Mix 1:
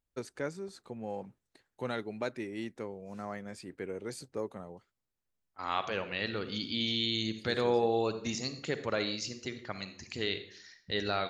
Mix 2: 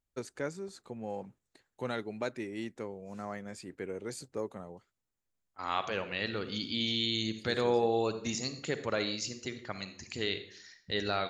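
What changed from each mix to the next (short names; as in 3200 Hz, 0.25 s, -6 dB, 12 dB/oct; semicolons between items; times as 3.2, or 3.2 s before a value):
master: add bell 7100 Hz +5.5 dB 0.23 oct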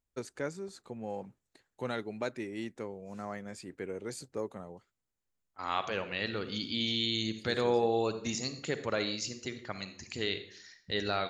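none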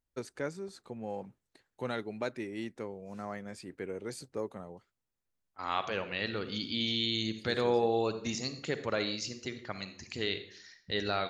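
master: add bell 7100 Hz -5.5 dB 0.23 oct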